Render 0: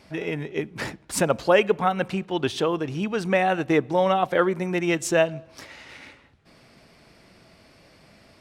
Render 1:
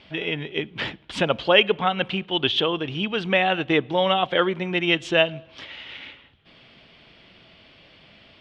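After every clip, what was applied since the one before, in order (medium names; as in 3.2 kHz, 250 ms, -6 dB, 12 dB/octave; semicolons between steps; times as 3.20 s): resonant low-pass 3.2 kHz, resonance Q 5.9; trim -1 dB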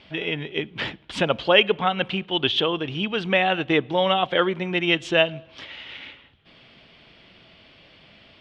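no audible change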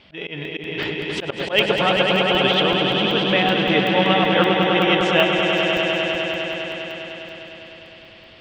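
echo with a slow build-up 101 ms, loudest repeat 5, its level -6.5 dB; slow attack 107 ms; crackling interface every 0.19 s, samples 64, zero, from 0.45 s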